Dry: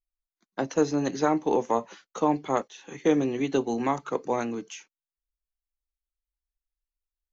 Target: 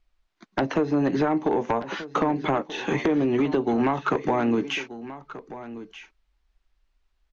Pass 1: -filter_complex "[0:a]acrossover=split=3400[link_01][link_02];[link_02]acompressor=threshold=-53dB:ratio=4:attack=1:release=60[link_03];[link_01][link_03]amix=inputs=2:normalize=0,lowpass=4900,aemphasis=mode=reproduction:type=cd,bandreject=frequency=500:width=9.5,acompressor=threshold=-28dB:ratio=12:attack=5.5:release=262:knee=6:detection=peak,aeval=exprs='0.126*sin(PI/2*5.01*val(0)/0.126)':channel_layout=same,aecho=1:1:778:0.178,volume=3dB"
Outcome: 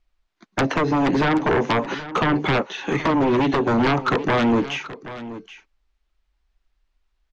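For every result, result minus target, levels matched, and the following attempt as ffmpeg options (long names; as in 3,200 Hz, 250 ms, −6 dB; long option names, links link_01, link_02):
downward compressor: peak gain reduction −9 dB; echo 455 ms early
-filter_complex "[0:a]acrossover=split=3400[link_01][link_02];[link_02]acompressor=threshold=-53dB:ratio=4:attack=1:release=60[link_03];[link_01][link_03]amix=inputs=2:normalize=0,lowpass=4900,aemphasis=mode=reproduction:type=cd,bandreject=frequency=500:width=9.5,acompressor=threshold=-38dB:ratio=12:attack=5.5:release=262:knee=6:detection=peak,aeval=exprs='0.126*sin(PI/2*5.01*val(0)/0.126)':channel_layout=same,aecho=1:1:778:0.178,volume=3dB"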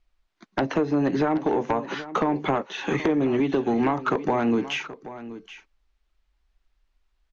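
echo 455 ms early
-filter_complex "[0:a]acrossover=split=3400[link_01][link_02];[link_02]acompressor=threshold=-53dB:ratio=4:attack=1:release=60[link_03];[link_01][link_03]amix=inputs=2:normalize=0,lowpass=4900,aemphasis=mode=reproduction:type=cd,bandreject=frequency=500:width=9.5,acompressor=threshold=-38dB:ratio=12:attack=5.5:release=262:knee=6:detection=peak,aeval=exprs='0.126*sin(PI/2*5.01*val(0)/0.126)':channel_layout=same,aecho=1:1:1233:0.178,volume=3dB"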